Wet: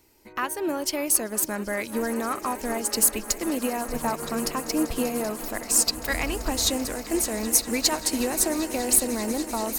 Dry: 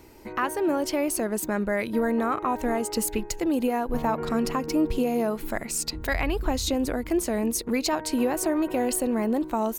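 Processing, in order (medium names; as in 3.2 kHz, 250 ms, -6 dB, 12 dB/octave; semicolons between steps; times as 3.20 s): treble shelf 2.7 kHz +11 dB; echo with a slow build-up 194 ms, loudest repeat 8, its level -18 dB; upward expansion 1.5:1, over -42 dBFS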